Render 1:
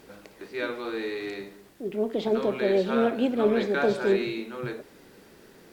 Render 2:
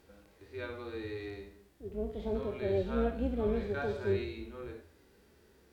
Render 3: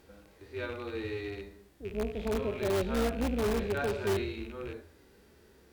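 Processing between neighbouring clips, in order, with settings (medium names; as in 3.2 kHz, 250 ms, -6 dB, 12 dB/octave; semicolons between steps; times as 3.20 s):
octave divider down 2 oct, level -1 dB; de-hum 85.62 Hz, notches 37; harmonic-percussive split percussive -17 dB; trim -7.5 dB
rattle on loud lows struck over -46 dBFS, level -40 dBFS; in parallel at -6 dB: integer overflow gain 26 dB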